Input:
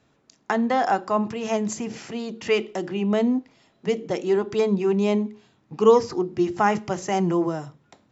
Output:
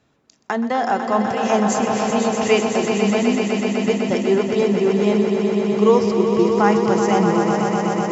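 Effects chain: gain riding within 5 dB 0.5 s; echo with a slow build-up 125 ms, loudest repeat 5, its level -8 dB; trim +2.5 dB

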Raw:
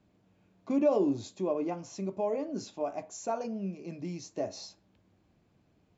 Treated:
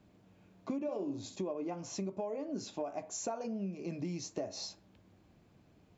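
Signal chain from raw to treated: compression 16:1, threshold -38 dBFS, peak gain reduction 18.5 dB; 0.76–1.36 s: flutter echo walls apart 11.1 m, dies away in 0.43 s; trim +4 dB

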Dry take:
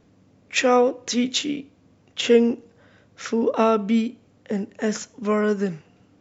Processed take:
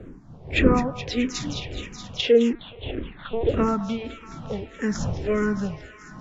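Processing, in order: wind noise 240 Hz -28 dBFS; low-pass that closes with the level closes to 1.3 kHz, closed at -12.5 dBFS; on a send: feedback echo behind a high-pass 212 ms, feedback 81%, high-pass 1.5 kHz, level -9 dB; 2.53–3.49 s: on the sum: LPC vocoder at 8 kHz pitch kept; barber-pole phaser -1.7 Hz

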